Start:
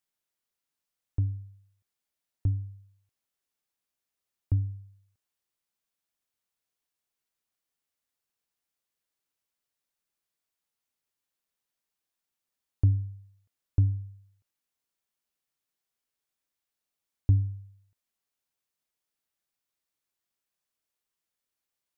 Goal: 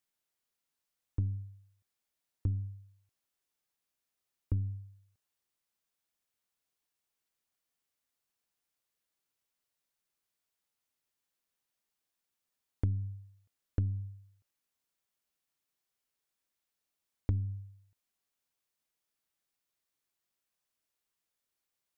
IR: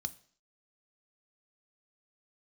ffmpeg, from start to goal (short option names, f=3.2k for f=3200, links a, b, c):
-af "acompressor=threshold=-28dB:ratio=5,aeval=exprs='0.119*(cos(1*acos(clip(val(0)/0.119,-1,1)))-cos(1*PI/2))+0.0119*(cos(4*acos(clip(val(0)/0.119,-1,1)))-cos(4*PI/2))':c=same"